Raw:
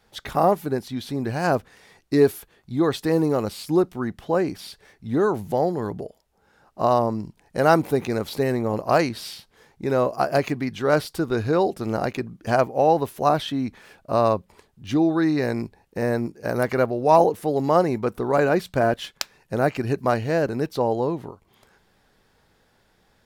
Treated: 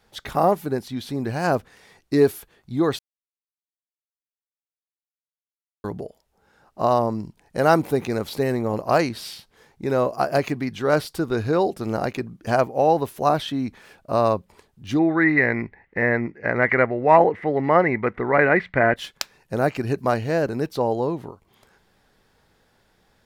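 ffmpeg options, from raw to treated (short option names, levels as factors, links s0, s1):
-filter_complex "[0:a]asettb=1/sr,asplit=3[s0][s1][s2];[s0]atrim=end=14.994[s3];[s1]atrim=start=14.99:end=18.96,asetpts=PTS-STARTPTS,afade=t=in:d=0.004:c=qsin,afade=t=out:st=3.966:d=0.004:c=qsin,lowpass=f=2000:t=q:w=11[s4];[s2]atrim=start=18.956[s5];[s3][s4]acrossfade=d=0.004:c1=hsin:c2=qsin[s6];[s6][s5]acrossfade=d=0.004:c1=qsin:c2=hsin,asplit=3[s7][s8][s9];[s7]atrim=end=2.99,asetpts=PTS-STARTPTS,afade=t=out:st=2.986:d=0.004:c=hsin[s10];[s8]atrim=start=2.99:end=5.84,asetpts=PTS-STARTPTS,volume=0[s11];[s9]atrim=start=5.84,asetpts=PTS-STARTPTS,afade=t=in:d=0.004:c=hsin[s12];[s10][s11][s12]concat=n=3:v=0:a=1"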